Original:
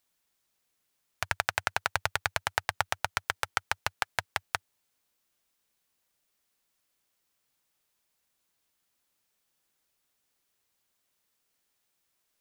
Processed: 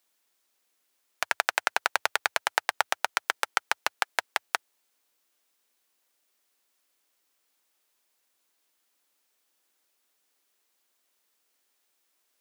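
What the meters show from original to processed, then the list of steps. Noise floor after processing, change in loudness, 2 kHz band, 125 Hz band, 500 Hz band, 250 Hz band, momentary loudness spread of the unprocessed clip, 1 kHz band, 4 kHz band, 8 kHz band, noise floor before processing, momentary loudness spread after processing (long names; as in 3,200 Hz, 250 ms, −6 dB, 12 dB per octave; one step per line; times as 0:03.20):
−75 dBFS, +3.5 dB, +3.5 dB, below −20 dB, +3.5 dB, +0.5 dB, 5 LU, +3.5 dB, +3.5 dB, +3.5 dB, −78 dBFS, 5 LU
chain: high-pass filter 250 Hz 24 dB per octave
level +3.5 dB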